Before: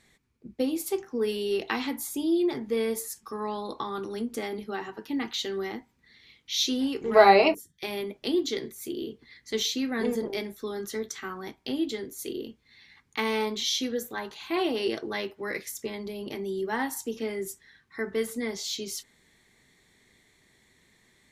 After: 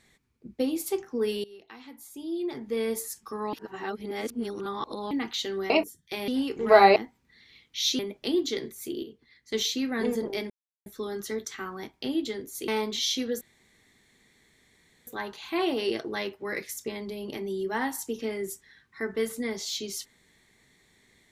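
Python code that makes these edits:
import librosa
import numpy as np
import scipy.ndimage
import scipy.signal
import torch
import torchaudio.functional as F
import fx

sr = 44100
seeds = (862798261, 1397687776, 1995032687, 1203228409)

y = fx.edit(x, sr, fx.fade_in_from(start_s=1.44, length_s=1.5, curve='qua', floor_db=-21.0),
    fx.reverse_span(start_s=3.53, length_s=1.58),
    fx.swap(start_s=5.7, length_s=1.03, other_s=7.41, other_length_s=0.58),
    fx.clip_gain(start_s=9.03, length_s=0.49, db=-7.5),
    fx.insert_silence(at_s=10.5, length_s=0.36),
    fx.cut(start_s=12.32, length_s=1.0),
    fx.insert_room_tone(at_s=14.05, length_s=1.66), tone=tone)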